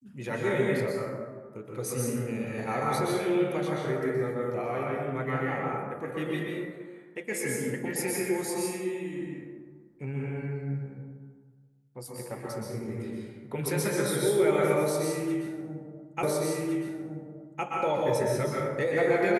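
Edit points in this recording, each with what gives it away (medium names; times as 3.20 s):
16.23 s: repeat of the last 1.41 s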